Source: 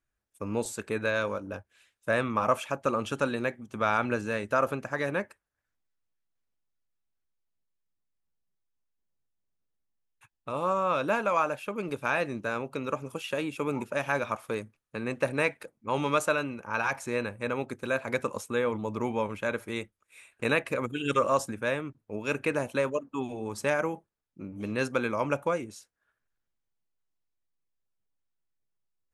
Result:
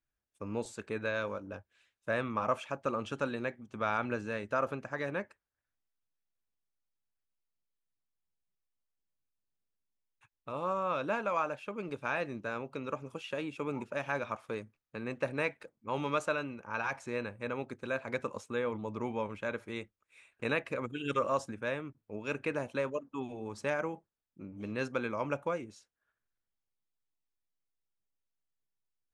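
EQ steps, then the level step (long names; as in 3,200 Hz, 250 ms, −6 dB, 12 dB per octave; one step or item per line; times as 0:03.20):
high-frequency loss of the air 94 metres
high-shelf EQ 6,900 Hz +6 dB
−5.5 dB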